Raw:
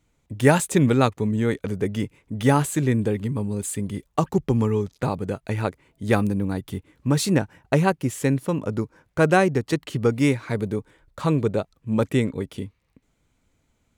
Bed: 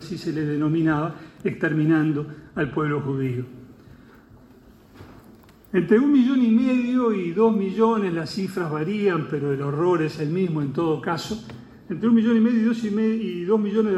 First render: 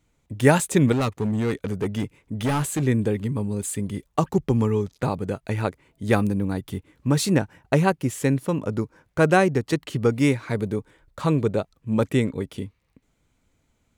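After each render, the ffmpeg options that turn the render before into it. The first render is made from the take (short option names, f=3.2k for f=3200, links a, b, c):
-filter_complex "[0:a]asettb=1/sr,asplit=3[a][b][c];[a]atrim=end=0.924[d];[b]atrim=start=0.92:end=2.82,asetpts=PTS-STARTPTS,afade=t=in:d=0.004:c=qsin,afade=t=out:st=1.896:d=0.004:c=qsin,asoftclip=type=hard:threshold=-19.5dB[e];[c]atrim=start=2.816[f];[d][e]acrossfade=d=0.004:c1=hsin:c2=qsin[g];[g][f]acrossfade=d=0.004:c1=qsin:c2=hsin"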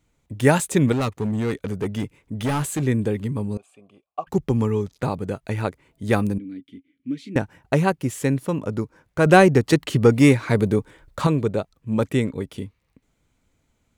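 -filter_complex "[0:a]asettb=1/sr,asplit=3[a][b][c];[a]atrim=end=3.574[d];[b]atrim=start=3.57:end=4.27,asetpts=PTS-STARTPTS,afade=t=in:d=0.004:c=qsin,afade=t=out:st=0.696:d=0.004:c=qsin,asplit=3[e][f][g];[e]bandpass=f=730:t=q:w=8,volume=0dB[h];[f]bandpass=f=1.09k:t=q:w=8,volume=-6dB[i];[g]bandpass=f=2.44k:t=q:w=8,volume=-9dB[j];[h][i][j]amix=inputs=3:normalize=0[k];[c]atrim=start=4.266[l];[d][k]acrossfade=d=0.004:c1=hsin:c2=qsin[m];[m][l]acrossfade=d=0.004:c1=qsin:c2=hsin,asettb=1/sr,asplit=3[n][o][p];[n]atrim=end=6.384[q];[o]atrim=start=6.38:end=7.36,asetpts=PTS-STARTPTS,afade=t=in:d=0.004:c=qsin,afade=t=out:st=0.976:d=0.004:c=qsin,asplit=3[r][s][t];[r]bandpass=f=270:t=q:w=8,volume=0dB[u];[s]bandpass=f=2.29k:t=q:w=8,volume=-6dB[v];[t]bandpass=f=3.01k:t=q:w=8,volume=-9dB[w];[u][v][w]amix=inputs=3:normalize=0[x];[p]atrim=start=7.356[y];[q][x]acrossfade=d=0.004:c1=hsin:c2=qsin[z];[z][y]acrossfade=d=0.004:c1=qsin:c2=hsin,asettb=1/sr,asplit=3[aa][ab][ac];[aa]atrim=end=9.264[ad];[ab]atrim=start=9.26:end=11.27,asetpts=PTS-STARTPTS,afade=t=in:d=0.004:c=qsin,afade=t=out:st=2.006:d=0.004:c=qsin,acontrast=68[ae];[ac]atrim=start=11.266[af];[ad][ae]acrossfade=d=0.004:c1=hsin:c2=qsin[ag];[ag][af]acrossfade=d=0.004:c1=qsin:c2=hsin"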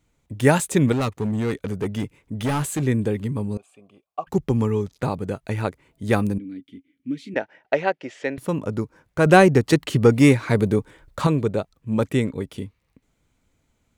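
-filter_complex "[0:a]asettb=1/sr,asplit=3[a][b][c];[a]atrim=end=7.344[d];[b]atrim=start=7.34:end=8.38,asetpts=PTS-STARTPTS,afade=t=in:d=0.004:c=qsin,afade=t=out:st=1.036:d=0.004:c=qsin,highpass=440,equalizer=f=620:t=q:w=4:g=6,equalizer=f=1.1k:t=q:w=4:g=-9,equalizer=f=1.9k:t=q:w=4:g=4,equalizer=f=4.1k:t=q:w=4:g=-4,lowpass=f=4.7k:w=0.5412,lowpass=f=4.7k:w=1.3066[e];[c]atrim=start=8.376[f];[d][e]acrossfade=d=0.004:c1=hsin:c2=qsin[g];[g][f]acrossfade=d=0.004:c1=qsin:c2=hsin"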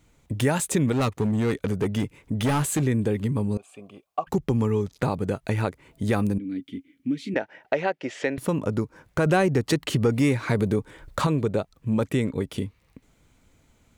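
-filter_complex "[0:a]asplit=2[a][b];[b]alimiter=limit=-14dB:level=0:latency=1:release=48,volume=2.5dB[c];[a][c]amix=inputs=2:normalize=0,acompressor=threshold=-27dB:ratio=2"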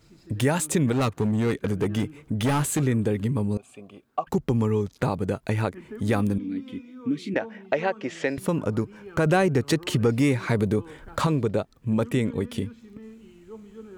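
-filter_complex "[1:a]volume=-22.5dB[a];[0:a][a]amix=inputs=2:normalize=0"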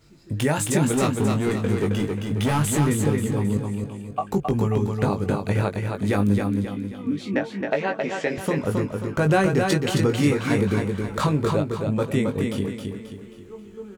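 -filter_complex "[0:a]asplit=2[a][b];[b]adelay=20,volume=-5.5dB[c];[a][c]amix=inputs=2:normalize=0,aecho=1:1:268|536|804|1072|1340:0.596|0.25|0.105|0.0441|0.0185"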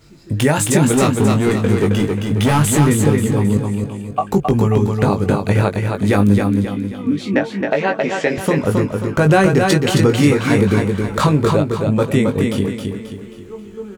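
-af "volume=7.5dB,alimiter=limit=-3dB:level=0:latency=1"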